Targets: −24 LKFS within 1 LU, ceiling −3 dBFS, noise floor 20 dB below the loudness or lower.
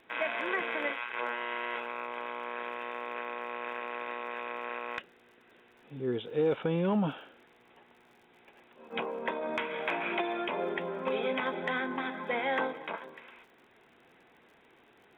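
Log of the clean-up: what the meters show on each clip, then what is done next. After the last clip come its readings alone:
crackle rate 43 per second; integrated loudness −34.0 LKFS; sample peak −20.0 dBFS; target loudness −24.0 LKFS
→ click removal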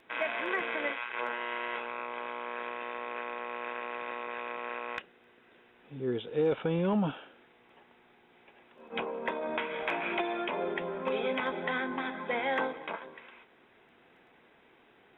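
crackle rate 0.066 per second; integrated loudness −34.0 LKFS; sample peak −15.5 dBFS; target loudness −24.0 LKFS
→ level +10 dB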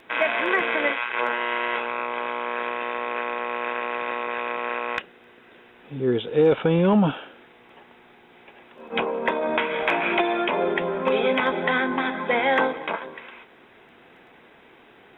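integrated loudness −24.0 LKFS; sample peak −5.5 dBFS; background noise floor −53 dBFS

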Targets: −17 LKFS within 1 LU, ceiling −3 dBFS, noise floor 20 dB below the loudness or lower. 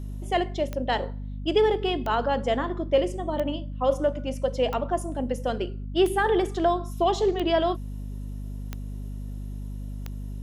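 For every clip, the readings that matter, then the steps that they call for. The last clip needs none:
number of clicks 8; mains hum 50 Hz; hum harmonics up to 250 Hz; level of the hum −31 dBFS; integrated loudness −26.0 LKFS; sample peak −10.0 dBFS; target loudness −17.0 LKFS
→ click removal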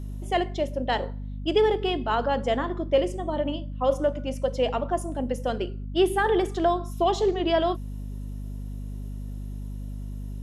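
number of clicks 0; mains hum 50 Hz; hum harmonics up to 250 Hz; level of the hum −31 dBFS
→ hum removal 50 Hz, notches 5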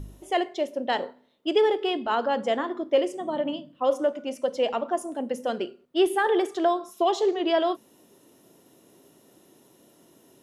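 mains hum none found; integrated loudness −26.5 LKFS; sample peak −10.5 dBFS; target loudness −17.0 LKFS
→ level +9.5 dB
brickwall limiter −3 dBFS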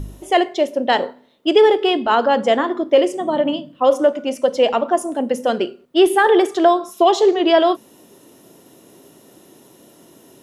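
integrated loudness −17.0 LKFS; sample peak −3.0 dBFS; background noise floor −50 dBFS

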